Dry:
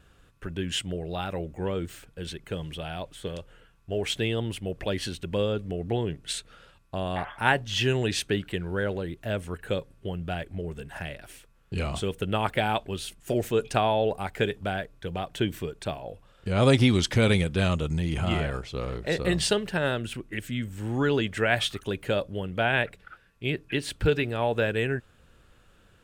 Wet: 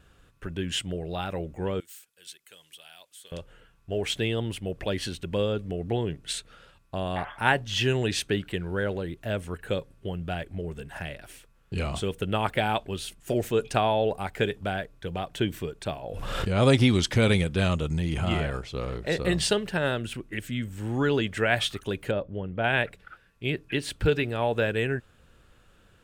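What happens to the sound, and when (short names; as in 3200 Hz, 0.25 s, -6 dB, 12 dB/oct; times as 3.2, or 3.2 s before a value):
1.8–3.32 differentiator
16.03–16.55 backwards sustainer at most 27 dB/s
22.11–22.64 tape spacing loss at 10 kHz 35 dB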